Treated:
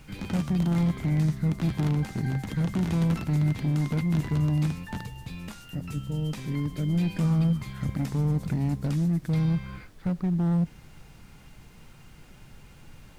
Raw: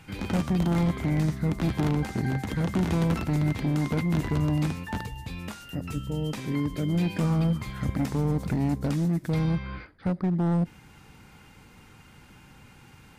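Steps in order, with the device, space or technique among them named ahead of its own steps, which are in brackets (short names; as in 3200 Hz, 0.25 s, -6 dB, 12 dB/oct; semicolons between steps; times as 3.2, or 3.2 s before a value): car interior (bell 150 Hz +8 dB 0.87 oct; high shelf 4200 Hz -5.5 dB; brown noise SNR 22 dB); high shelf 2700 Hz +9 dB; gain -6 dB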